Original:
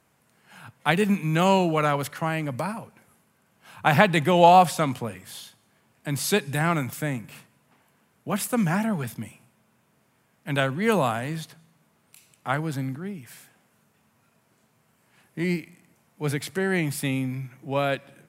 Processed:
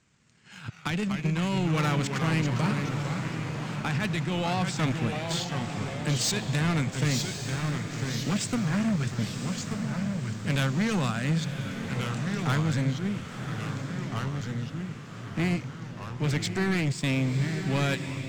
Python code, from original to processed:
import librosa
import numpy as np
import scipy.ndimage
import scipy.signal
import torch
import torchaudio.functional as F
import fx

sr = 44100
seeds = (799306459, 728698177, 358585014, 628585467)

p1 = scipy.signal.sosfilt(scipy.signal.butter(12, 8100.0, 'lowpass', fs=sr, output='sos'), x)
p2 = fx.peak_eq(p1, sr, hz=710.0, db=-14.0, octaves=1.9)
p3 = fx.leveller(p2, sr, passes=1)
p4 = fx.level_steps(p3, sr, step_db=22)
p5 = p3 + (p4 * 10.0 ** (-2.0 / 20.0))
p6 = fx.transient(p5, sr, attack_db=3, sustain_db=-11)
p7 = fx.over_compress(p6, sr, threshold_db=-23.0, ratio=-1.0)
p8 = 10.0 ** (-25.0 / 20.0) * np.tanh(p7 / 10.0 ** (-25.0 / 20.0))
p9 = p8 + fx.echo_diffused(p8, sr, ms=1071, feedback_pct=45, wet_db=-7.5, dry=0)
p10 = fx.echo_pitch(p9, sr, ms=139, semitones=-2, count=3, db_per_echo=-6.0)
y = p10 * 10.0 ** (2.0 / 20.0)